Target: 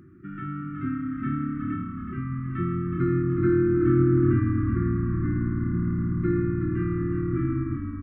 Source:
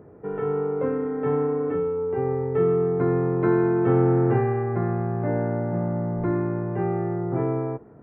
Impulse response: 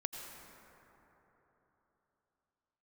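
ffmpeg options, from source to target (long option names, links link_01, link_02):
-filter_complex "[0:a]asettb=1/sr,asplit=3[link_01][link_02][link_03];[link_01]atrim=end=3.224[link_04];[link_02]atrim=start=3.22:end=5.84,asetpts=PTS-STARTPTS,afade=type=in:duration=0.004:curve=qsin,afade=type=out:start_time=2.616:duration=0.004:curve=qsin,lowpass=frequency=1500:poles=1[link_05];[link_03]atrim=start=5.836[link_06];[link_04][link_05]acrossfade=duration=0.004:curve1=hsin:curve2=qsin[link_07];[link_07][link_06]acrossfade=duration=0.004:curve1=qsin:curve2=hsin,afftfilt=real='re*(1-between(b*sr/4096,380,1100))':imag='im*(1-between(b*sr/4096,380,1100))':win_size=4096:overlap=0.75,asplit=7[link_08][link_09][link_10][link_11][link_12][link_13][link_14];[link_09]adelay=369,afreqshift=-37,volume=-6.5dB[link_15];[link_10]adelay=738,afreqshift=-74,volume=-12.3dB[link_16];[link_11]adelay=1107,afreqshift=-111,volume=-18.2dB[link_17];[link_12]adelay=1476,afreqshift=-148,volume=-24dB[link_18];[link_13]adelay=1845,afreqshift=-185,volume=-29.9dB[link_19];[link_14]adelay=2214,afreqshift=-222,volume=-35.7dB[link_20];[link_08][link_15][link_16][link_17][link_18][link_19][link_20]amix=inputs=7:normalize=0"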